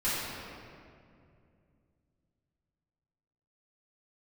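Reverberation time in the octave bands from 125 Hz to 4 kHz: 3.7, 3.3, 2.7, 2.1, 1.9, 1.4 seconds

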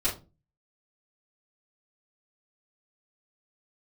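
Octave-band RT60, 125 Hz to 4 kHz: 0.50, 0.45, 0.35, 0.25, 0.20, 0.20 seconds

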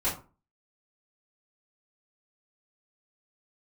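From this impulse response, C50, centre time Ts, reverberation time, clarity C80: 8.5 dB, 28 ms, 0.35 s, 14.0 dB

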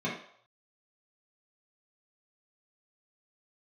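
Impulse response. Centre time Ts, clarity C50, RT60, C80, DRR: 36 ms, 4.0 dB, 0.65 s, 9.0 dB, −8.0 dB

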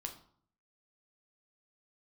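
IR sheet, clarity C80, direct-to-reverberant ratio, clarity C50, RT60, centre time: 14.5 dB, 3.0 dB, 10.5 dB, 0.55 s, 14 ms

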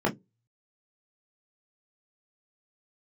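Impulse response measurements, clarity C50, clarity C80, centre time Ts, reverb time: 20.5 dB, 30.0 dB, 19 ms, 0.15 s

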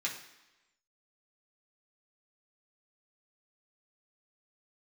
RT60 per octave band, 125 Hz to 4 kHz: 0.85, 0.95, 1.0, 1.0, 1.1, 1.0 seconds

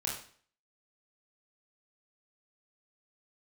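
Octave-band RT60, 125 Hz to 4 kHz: 0.50, 0.50, 0.50, 0.50, 0.50, 0.45 seconds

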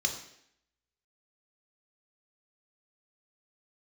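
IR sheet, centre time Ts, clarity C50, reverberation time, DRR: 19 ms, 8.0 dB, 0.70 s, 2.5 dB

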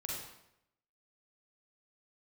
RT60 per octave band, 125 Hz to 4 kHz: 0.85, 0.80, 0.85, 0.80, 0.75, 0.65 seconds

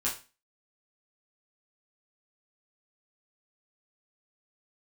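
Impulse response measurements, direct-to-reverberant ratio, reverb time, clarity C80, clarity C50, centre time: −8.0 dB, 0.30 s, 15.0 dB, 9.0 dB, 25 ms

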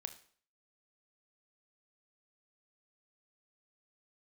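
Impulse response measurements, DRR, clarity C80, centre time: 8.5 dB, 17.5 dB, 8 ms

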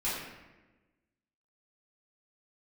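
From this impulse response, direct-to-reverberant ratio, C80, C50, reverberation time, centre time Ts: −10.5 dB, 3.0 dB, 0.5 dB, 1.2 s, 73 ms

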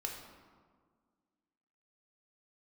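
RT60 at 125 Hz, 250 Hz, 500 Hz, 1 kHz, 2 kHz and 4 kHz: 1.8, 2.3, 1.8, 1.7, 1.2, 0.90 seconds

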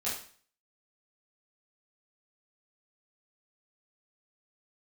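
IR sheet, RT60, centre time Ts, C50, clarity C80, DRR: 0.45 s, 40 ms, 4.5 dB, 9.0 dB, −9.5 dB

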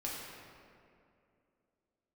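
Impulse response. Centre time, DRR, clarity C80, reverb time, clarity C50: 123 ms, −5.5 dB, 1.0 dB, 2.5 s, −1.0 dB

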